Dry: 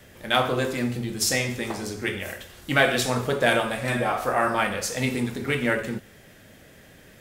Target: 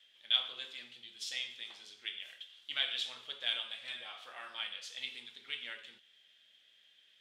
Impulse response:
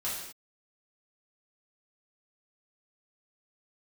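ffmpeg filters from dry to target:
-af "bandpass=frequency=3300:width_type=q:width=7.1:csg=0"

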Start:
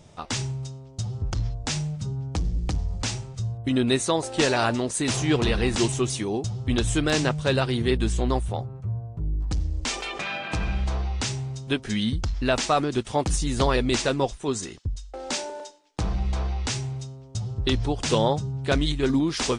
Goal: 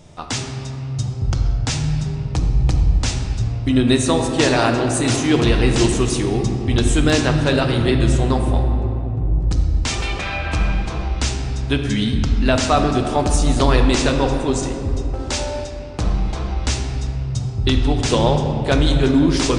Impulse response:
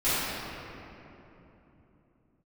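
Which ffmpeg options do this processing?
-filter_complex "[0:a]asplit=2[link_01][link_02];[1:a]atrim=start_sample=2205,lowshelf=frequency=130:gain=5.5[link_03];[link_02][link_03]afir=irnorm=-1:irlink=0,volume=-18dB[link_04];[link_01][link_04]amix=inputs=2:normalize=0,volume=3.5dB"

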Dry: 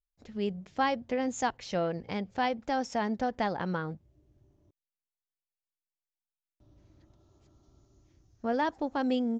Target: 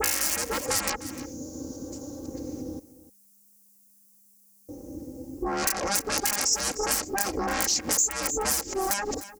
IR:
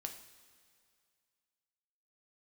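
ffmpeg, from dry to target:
-filter_complex "[0:a]areverse,lowshelf=frequency=280:width_type=q:width=1.5:gain=8,aeval=exprs='val(0)*sin(2*PI*200*n/s)':channel_layout=same,aeval=exprs='(mod(10*val(0)+1,2)-1)/10':channel_layout=same,equalizer=frequency=560:width=0.96:gain=10,aeval=exprs='0.266*sin(PI/2*7.08*val(0)/0.266)':channel_layout=same,highpass=47,aecho=1:1:3.7:0.56,alimiter=limit=-15.5dB:level=0:latency=1:release=81,aexciter=amount=12.8:drive=4.8:freq=5200,asplit=2[link_01][link_02];[link_02]aecho=0:1:302:0.133[link_03];[link_01][link_03]amix=inputs=2:normalize=0,acompressor=threshold=-15dB:ratio=6,volume=-6dB"

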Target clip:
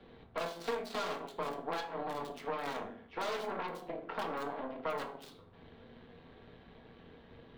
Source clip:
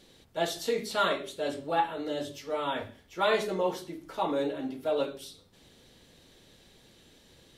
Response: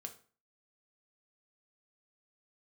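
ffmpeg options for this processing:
-filter_complex "[0:a]acrossover=split=230|2500[link_01][link_02][link_03];[link_03]acrusher=bits=4:dc=4:mix=0:aa=0.000001[link_04];[link_01][link_02][link_04]amix=inputs=3:normalize=0,equalizer=frequency=110:width=0.86:gain=12.5,asplit=2[link_05][link_06];[link_06]acompressor=threshold=-37dB:ratio=6,volume=3dB[link_07];[link_05][link_07]amix=inputs=2:normalize=0,aeval=exprs='0.282*(cos(1*acos(clip(val(0)/0.282,-1,1)))-cos(1*PI/2))+0.0891*(cos(8*acos(clip(val(0)/0.282,-1,1)))-cos(8*PI/2))':channel_layout=same,equalizer=frequency=125:width_type=o:width=1:gain=-11,equalizer=frequency=1000:width_type=o:width=1:gain=5,equalizer=frequency=4000:width_type=o:width=1:gain=5,acrossover=split=140|660|6000[link_08][link_09][link_10][link_11];[link_08]acompressor=threshold=-52dB:ratio=4[link_12];[link_09]acompressor=threshold=-35dB:ratio=4[link_13];[link_10]acompressor=threshold=-35dB:ratio=4[link_14];[link_11]acompressor=threshold=-55dB:ratio=4[link_15];[link_12][link_13][link_14][link_15]amix=inputs=4:normalize=0[link_16];[1:a]atrim=start_sample=2205[link_17];[link_16][link_17]afir=irnorm=-1:irlink=0,volume=-2dB"

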